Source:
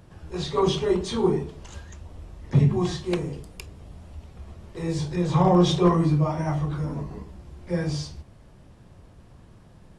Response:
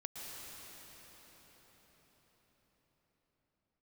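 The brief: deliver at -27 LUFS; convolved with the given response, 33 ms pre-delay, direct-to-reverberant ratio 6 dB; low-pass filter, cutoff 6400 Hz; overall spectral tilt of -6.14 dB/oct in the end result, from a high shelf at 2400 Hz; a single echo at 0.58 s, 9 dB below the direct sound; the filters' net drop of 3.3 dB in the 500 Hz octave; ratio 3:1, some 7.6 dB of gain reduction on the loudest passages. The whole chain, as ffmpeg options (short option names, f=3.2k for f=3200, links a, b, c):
-filter_complex "[0:a]lowpass=6.4k,equalizer=f=500:t=o:g=-5,highshelf=f=2.4k:g=3.5,acompressor=threshold=-25dB:ratio=3,aecho=1:1:580:0.355,asplit=2[a][b];[1:a]atrim=start_sample=2205,adelay=33[c];[b][c]afir=irnorm=-1:irlink=0,volume=-5.5dB[d];[a][d]amix=inputs=2:normalize=0,volume=2.5dB"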